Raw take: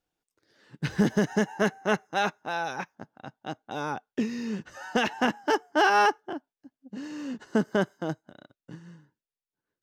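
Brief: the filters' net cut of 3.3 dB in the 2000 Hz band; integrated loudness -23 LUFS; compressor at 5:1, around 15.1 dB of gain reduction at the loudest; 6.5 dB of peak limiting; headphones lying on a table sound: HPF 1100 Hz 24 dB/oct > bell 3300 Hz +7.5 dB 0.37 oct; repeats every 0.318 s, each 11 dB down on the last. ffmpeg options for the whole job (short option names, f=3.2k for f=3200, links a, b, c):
-af "equalizer=f=2k:t=o:g=-5,acompressor=threshold=-36dB:ratio=5,alimiter=level_in=5.5dB:limit=-24dB:level=0:latency=1,volume=-5.5dB,highpass=f=1.1k:w=0.5412,highpass=f=1.1k:w=1.3066,equalizer=f=3.3k:t=o:w=0.37:g=7.5,aecho=1:1:318|636|954:0.282|0.0789|0.0221,volume=25.5dB"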